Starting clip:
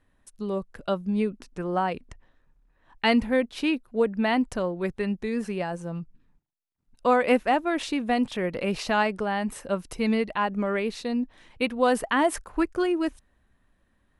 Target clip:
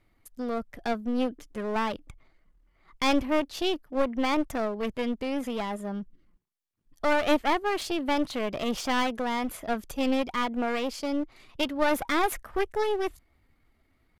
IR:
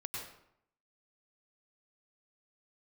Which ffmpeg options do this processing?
-af "aeval=exprs='clip(val(0),-1,0.0251)':c=same,asetrate=52444,aresample=44100,atempo=0.840896"

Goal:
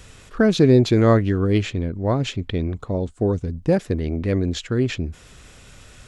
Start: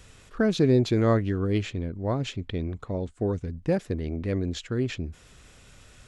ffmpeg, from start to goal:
-filter_complex "[0:a]asettb=1/sr,asplit=3[s0][s1][s2];[s0]atrim=end=2.774[s3];[s1]atrim=start=2.77:end=3.73,asetpts=PTS-STARTPTS,afade=t=in:d=0.004:c=qsin,afade=t=out:st=0.956:d=0.004:c=qsin,equalizer=f=2000:w=1.3:g=-5.5[s4];[s2]atrim=start=3.726[s5];[s3][s4]acrossfade=d=0.004:c1=hsin:c2=qsin[s6];[s6][s5]acrossfade=d=0.004:c1=qsin:c2=hsin,volume=2.11"

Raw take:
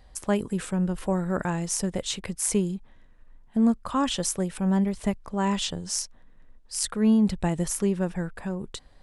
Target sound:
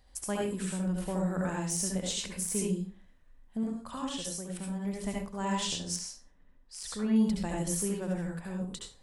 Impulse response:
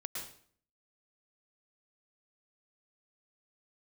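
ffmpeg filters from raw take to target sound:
-filter_complex "[0:a]highshelf=f=3900:g=8,asettb=1/sr,asplit=3[s0][s1][s2];[s0]atrim=end=3.634[s3];[s1]atrim=start=3.63:end=4.85,asetpts=PTS-STARTPTS,afade=t=in:d=0.004:c=qsin,afade=t=out:st=1.216:d=0.004:c=qsin,acompressor=threshold=0.0447:ratio=10[s4];[s2]atrim=start=4.846[s5];[s3][s4]acrossfade=d=0.004:c1=hsin:c2=qsin[s6];[s6][s5]acrossfade=d=0.004:c1=qsin:c2=hsin[s7];[1:a]atrim=start_sample=2205,asetrate=70560,aresample=44100[s8];[s7][s8]afir=irnorm=-1:irlink=0,deesser=0.45,asettb=1/sr,asplit=3[s9][s10][s11];[s9]atrim=end=5.964[s12];[s10]atrim=start=5.96:end=7.16,asetpts=PTS-STARTPTS,afade=t=in:d=0.004:c=qsin,afade=t=out:st=1.196:d=0.004:c=qsin,aemphasis=mode=reproduction:type=50fm[s13];[s11]atrim=start=7.156[s14];[s12][s13]acrossfade=d=0.004:c1=hsin:c2=qsin[s15];[s15][s14]acrossfade=d=0.004:c1=qsin:c2=hsin,volume=0.794"

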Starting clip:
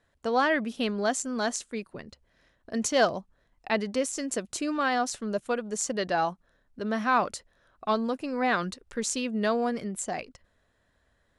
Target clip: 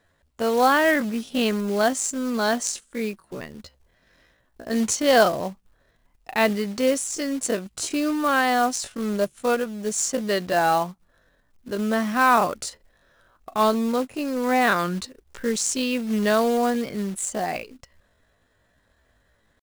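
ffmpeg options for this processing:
-af "atempo=0.58,acrusher=bits=4:mode=log:mix=0:aa=0.000001,volume=1.88"

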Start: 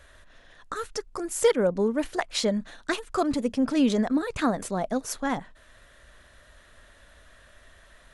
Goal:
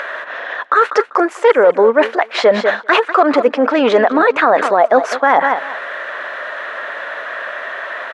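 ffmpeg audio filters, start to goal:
-af "aeval=exprs='clip(val(0),-1,0.126)':c=same,highpass=f=560:p=1,aecho=1:1:196|392:0.133|0.024,areverse,acompressor=threshold=0.0158:ratio=20,areverse,asuperpass=centerf=920:order=4:qfactor=0.59,acompressor=mode=upward:threshold=0.00126:ratio=2.5,alimiter=level_in=56.2:limit=0.891:release=50:level=0:latency=1,volume=0.891"

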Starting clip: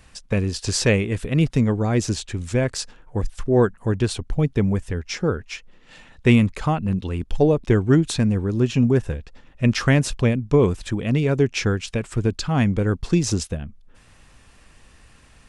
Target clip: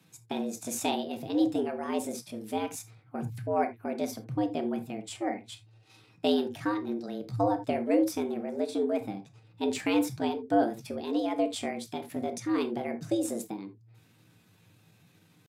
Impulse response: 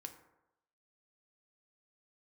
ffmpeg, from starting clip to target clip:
-filter_complex "[0:a]afreqshift=69,asetrate=60591,aresample=44100,atempo=0.727827,bandreject=f=60:t=h:w=6,bandreject=f=120:t=h:w=6[s0];[1:a]atrim=start_sample=2205,atrim=end_sample=3969[s1];[s0][s1]afir=irnorm=-1:irlink=0,volume=0.501"

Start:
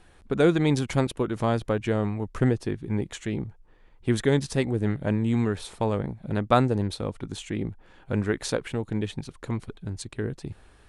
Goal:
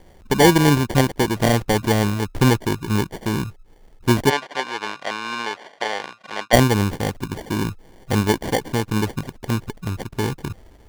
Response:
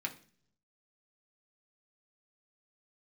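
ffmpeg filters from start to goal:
-filter_complex "[0:a]equalizer=f=1600:w=1.8:g=-3.5,acrusher=samples=34:mix=1:aa=0.000001,asplit=3[s0][s1][s2];[s0]afade=t=out:st=4.29:d=0.02[s3];[s1]highpass=740,lowpass=4300,afade=t=in:st=4.29:d=0.02,afade=t=out:st=6.52:d=0.02[s4];[s2]afade=t=in:st=6.52:d=0.02[s5];[s3][s4][s5]amix=inputs=3:normalize=0,volume=2.24"

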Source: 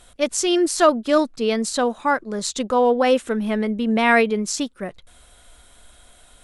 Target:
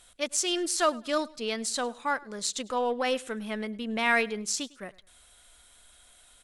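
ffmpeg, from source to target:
-af "aeval=exprs='0.596*(cos(1*acos(clip(val(0)/0.596,-1,1)))-cos(1*PI/2))+0.00596*(cos(8*acos(clip(val(0)/0.596,-1,1)))-cos(8*PI/2))':c=same,tiltshelf=f=1100:g=-5,aecho=1:1:103|206:0.075|0.0217,volume=0.376"

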